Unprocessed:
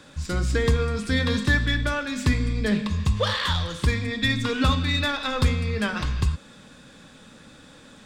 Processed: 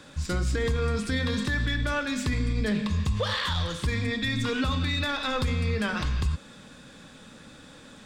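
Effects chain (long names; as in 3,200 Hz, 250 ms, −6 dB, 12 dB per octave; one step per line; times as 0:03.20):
brickwall limiter −18.5 dBFS, peak gain reduction 9.5 dB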